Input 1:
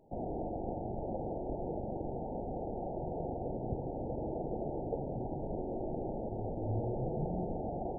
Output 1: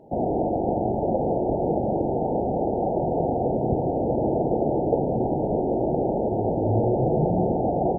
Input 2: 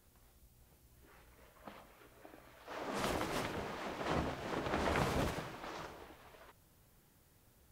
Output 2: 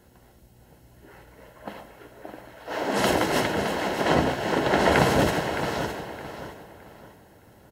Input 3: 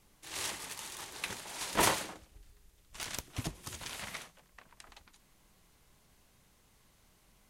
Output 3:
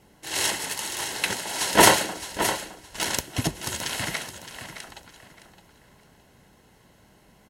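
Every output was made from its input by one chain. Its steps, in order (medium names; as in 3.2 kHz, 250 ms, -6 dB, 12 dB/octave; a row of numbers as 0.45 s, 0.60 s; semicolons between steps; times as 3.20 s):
comb of notches 1.2 kHz; on a send: feedback delay 615 ms, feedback 32%, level -10 dB; on the sum: tape noise reduction on one side only decoder only; normalise loudness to -24 LUFS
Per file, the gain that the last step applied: +15.0 dB, +16.0 dB, +14.0 dB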